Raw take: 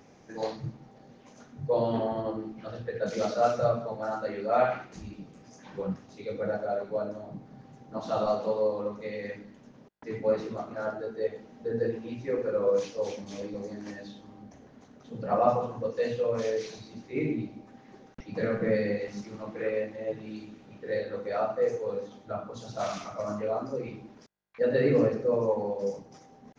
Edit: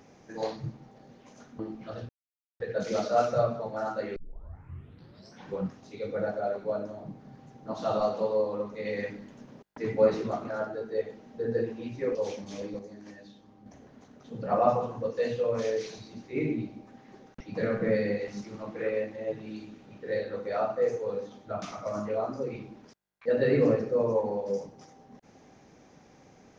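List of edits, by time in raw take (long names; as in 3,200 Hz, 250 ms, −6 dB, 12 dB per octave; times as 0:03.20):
0:01.59–0:02.36: remove
0:02.86: splice in silence 0.51 s
0:04.42: tape start 1.31 s
0:09.11–0:10.77: clip gain +4 dB
0:12.41–0:12.95: remove
0:13.59–0:14.46: clip gain −7 dB
0:22.42–0:22.95: remove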